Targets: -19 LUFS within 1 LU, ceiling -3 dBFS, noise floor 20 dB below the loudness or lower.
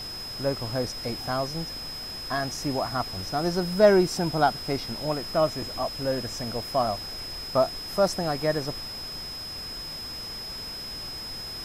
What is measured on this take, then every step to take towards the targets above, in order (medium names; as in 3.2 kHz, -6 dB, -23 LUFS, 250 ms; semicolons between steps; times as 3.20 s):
steady tone 5.1 kHz; tone level -35 dBFS; noise floor -37 dBFS; noise floor target -48 dBFS; loudness -27.5 LUFS; peak level -7.5 dBFS; loudness target -19.0 LUFS
-> band-stop 5.1 kHz, Q 30; noise print and reduce 11 dB; trim +8.5 dB; peak limiter -3 dBFS